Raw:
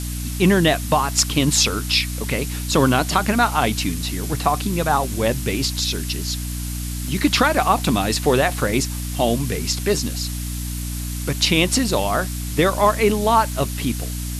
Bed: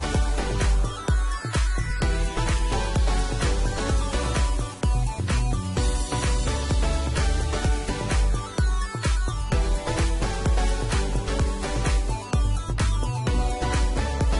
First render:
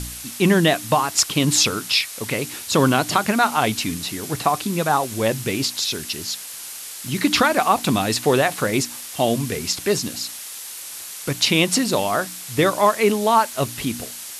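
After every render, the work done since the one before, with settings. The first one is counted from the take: de-hum 60 Hz, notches 5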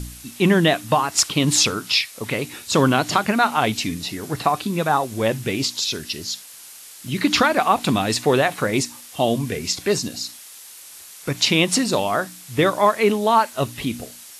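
noise print and reduce 7 dB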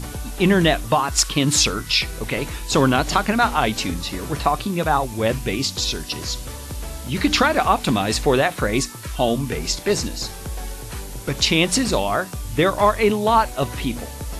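add bed -8.5 dB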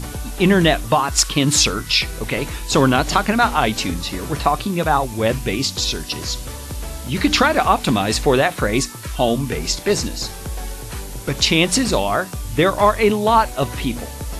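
trim +2 dB

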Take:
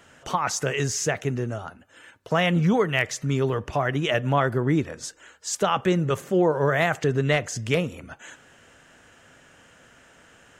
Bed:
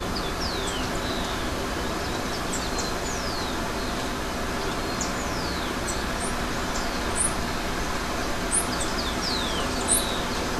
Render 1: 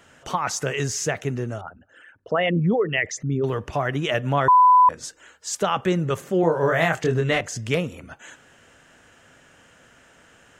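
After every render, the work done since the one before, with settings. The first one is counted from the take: 1.61–3.44 s: resonances exaggerated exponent 2; 4.48–4.89 s: bleep 1 kHz -10 dBFS; 6.41–7.41 s: doubling 24 ms -4 dB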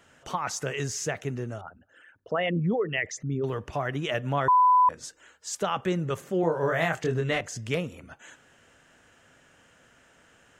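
trim -5.5 dB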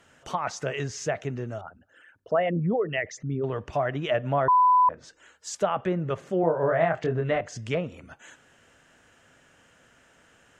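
low-pass that closes with the level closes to 1.8 kHz, closed at -22.5 dBFS; dynamic bell 640 Hz, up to +8 dB, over -45 dBFS, Q 3.8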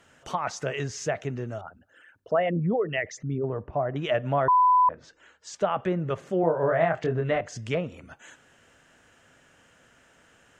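3.38–3.96 s: low-pass 1 kHz; 4.49–5.70 s: distance through air 84 m

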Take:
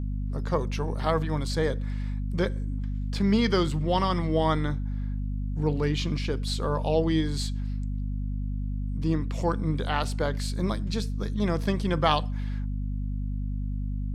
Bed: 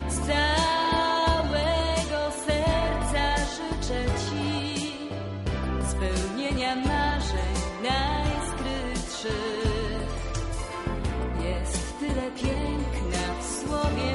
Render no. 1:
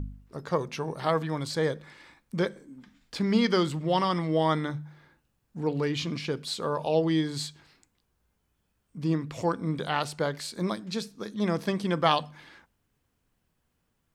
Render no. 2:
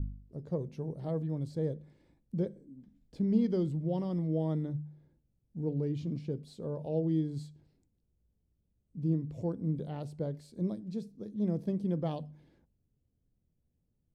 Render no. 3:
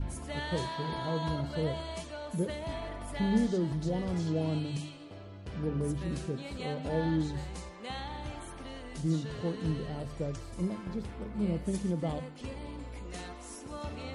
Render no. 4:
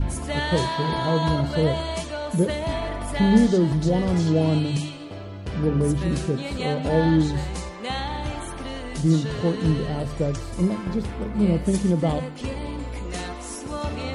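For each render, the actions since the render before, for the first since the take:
de-hum 50 Hz, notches 5
FFT filter 130 Hz 0 dB, 580 Hz -9 dB, 1.2 kHz -28 dB, 10 kHz -21 dB
add bed -14 dB
trim +11 dB

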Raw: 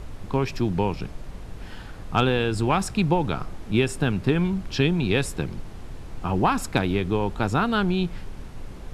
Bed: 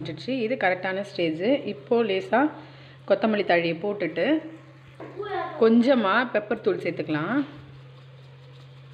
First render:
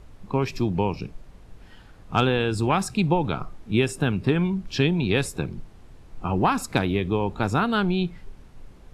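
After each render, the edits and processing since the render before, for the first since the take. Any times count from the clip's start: noise print and reduce 10 dB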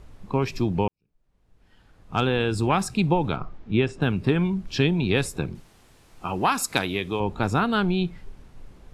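0.88–2.41 s: fade in quadratic; 3.36–4.02 s: distance through air 150 m; 5.55–7.20 s: tilt EQ +2.5 dB/octave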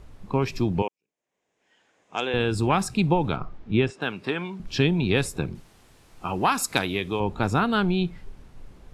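0.82–2.34 s: cabinet simulation 450–8300 Hz, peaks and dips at 860 Hz -3 dB, 1.3 kHz -8 dB, 2.1 kHz +3 dB, 4.4 kHz -8 dB, 6.8 kHz +7 dB; 3.90–4.60 s: frequency weighting A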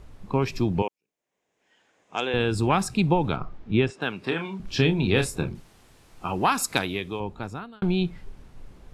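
4.19–5.52 s: doubling 31 ms -7.5 dB; 6.68–7.82 s: fade out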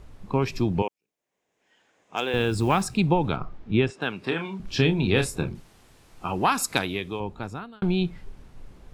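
2.16–2.97 s: short-mantissa float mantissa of 4-bit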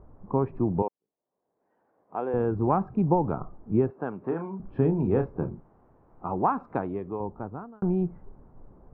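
low-pass 1.1 kHz 24 dB/octave; bass shelf 110 Hz -7 dB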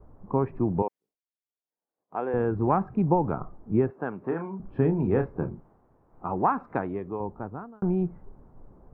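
expander -55 dBFS; dynamic bell 1.9 kHz, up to +7 dB, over -52 dBFS, Q 1.9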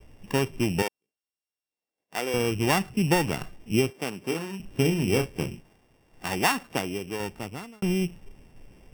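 sorted samples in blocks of 16 samples; vibrato 0.9 Hz 12 cents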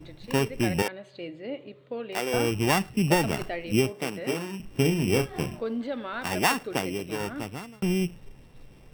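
add bed -13 dB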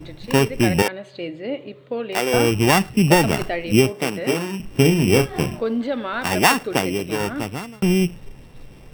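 trim +8 dB; peak limiter -1 dBFS, peak gain reduction 1.5 dB

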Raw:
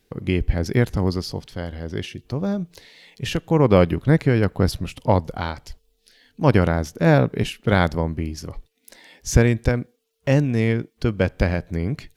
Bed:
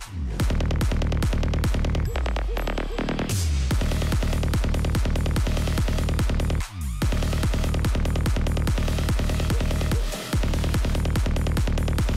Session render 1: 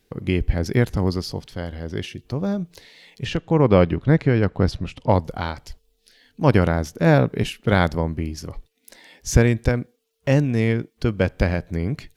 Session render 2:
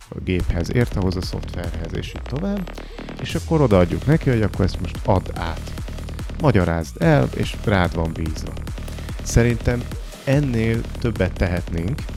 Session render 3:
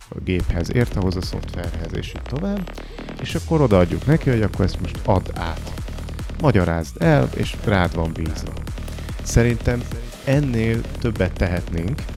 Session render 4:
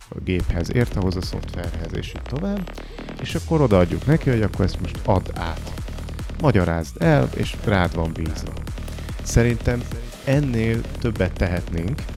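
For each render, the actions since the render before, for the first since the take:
3.25–5.09 s: distance through air 85 m
add bed -6.5 dB
delay 567 ms -22.5 dB
trim -1 dB

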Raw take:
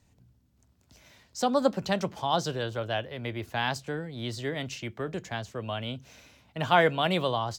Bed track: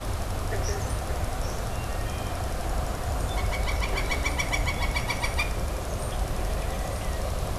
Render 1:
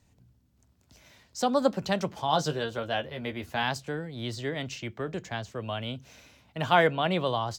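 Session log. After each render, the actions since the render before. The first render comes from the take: 2.27–3.63 s: doubling 13 ms -5.5 dB; 4.34–5.52 s: peaking EQ 11 kHz -8.5 dB 0.38 oct; 6.87–7.27 s: low-pass 3 kHz 6 dB/octave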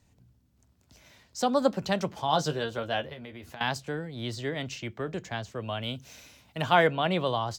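3.13–3.61 s: compression 10:1, threshold -39 dBFS; 5.83–6.62 s: treble shelf 4.3 kHz +9 dB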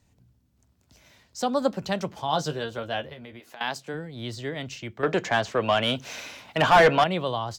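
3.39–3.93 s: high-pass 460 Hz -> 160 Hz; 5.03–7.04 s: overdrive pedal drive 24 dB, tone 2.1 kHz, clips at -7.5 dBFS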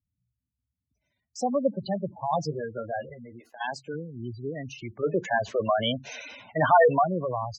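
spectral gate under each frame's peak -10 dB strong; gate -53 dBFS, range -19 dB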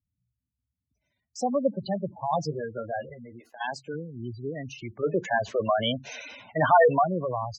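no audible change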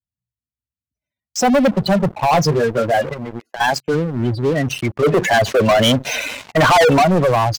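waveshaping leveller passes 5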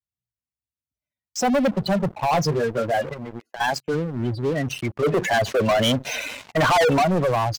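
trim -6 dB

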